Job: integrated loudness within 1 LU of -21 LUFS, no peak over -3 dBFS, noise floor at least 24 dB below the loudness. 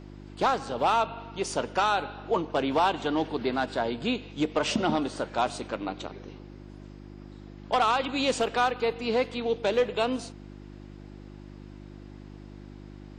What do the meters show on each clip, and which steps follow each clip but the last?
hum 50 Hz; highest harmonic 350 Hz; hum level -43 dBFS; loudness -28.0 LUFS; peak level -15.0 dBFS; loudness target -21.0 LUFS
-> de-hum 50 Hz, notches 7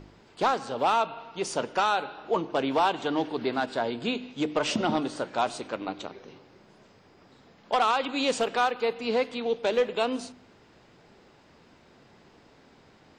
hum not found; loudness -28.0 LUFS; peak level -15.0 dBFS; loudness target -21.0 LUFS
-> trim +7 dB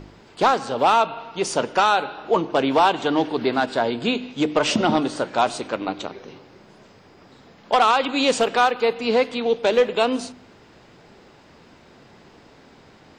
loudness -21.0 LUFS; peak level -8.0 dBFS; noise floor -51 dBFS

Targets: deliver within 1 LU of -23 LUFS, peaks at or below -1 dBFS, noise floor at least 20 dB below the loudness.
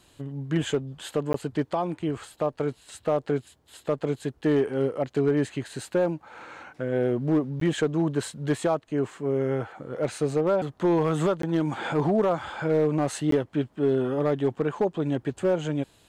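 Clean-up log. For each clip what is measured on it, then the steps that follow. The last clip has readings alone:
clipped samples 0.7%; clipping level -15.5 dBFS; dropouts 4; longest dropout 13 ms; loudness -27.0 LUFS; peak level -15.5 dBFS; loudness target -23.0 LUFS
-> clip repair -15.5 dBFS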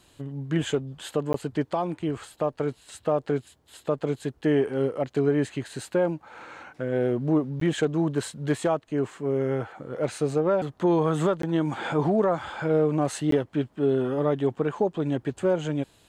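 clipped samples 0.0%; dropouts 4; longest dropout 13 ms
-> interpolate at 1.33/7.60/11.42/13.31 s, 13 ms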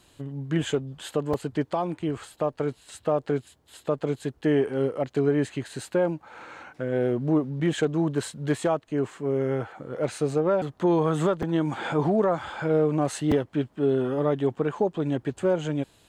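dropouts 0; loudness -26.5 LUFS; peak level -11.5 dBFS; loudness target -23.0 LUFS
-> trim +3.5 dB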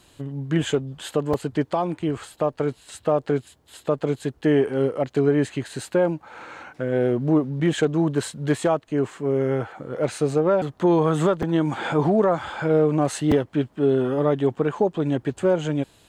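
loudness -23.0 LUFS; peak level -8.0 dBFS; noise floor -58 dBFS

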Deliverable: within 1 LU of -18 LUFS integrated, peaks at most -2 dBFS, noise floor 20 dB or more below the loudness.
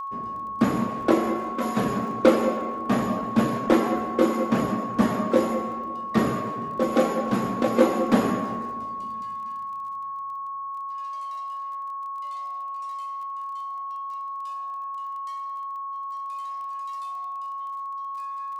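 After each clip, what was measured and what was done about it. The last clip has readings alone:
tick rate 19 per s; steady tone 1.1 kHz; tone level -30 dBFS; loudness -26.5 LUFS; peak level -4.0 dBFS; loudness target -18.0 LUFS
-> de-click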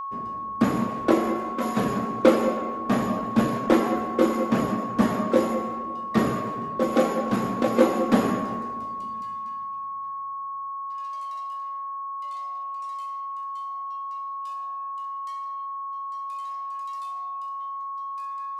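tick rate 0 per s; steady tone 1.1 kHz; tone level -30 dBFS
-> band-stop 1.1 kHz, Q 30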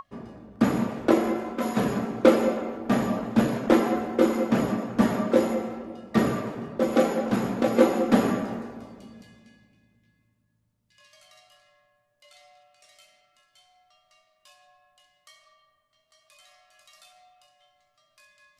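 steady tone not found; loudness -24.5 LUFS; peak level -4.5 dBFS; loudness target -18.0 LUFS
-> trim +6.5 dB; peak limiter -2 dBFS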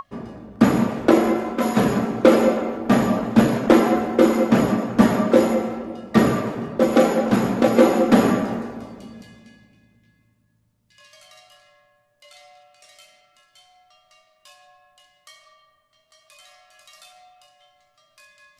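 loudness -18.5 LUFS; peak level -2.0 dBFS; noise floor -65 dBFS

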